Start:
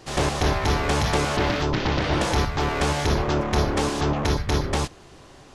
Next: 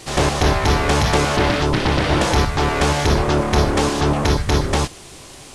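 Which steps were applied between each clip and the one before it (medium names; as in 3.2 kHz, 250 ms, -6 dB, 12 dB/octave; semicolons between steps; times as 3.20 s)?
band noise 2–10 kHz -49 dBFS; trim +5.5 dB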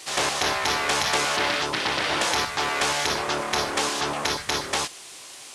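high-pass 1.4 kHz 6 dB/octave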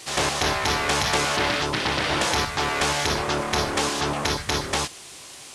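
bass shelf 210 Hz +12 dB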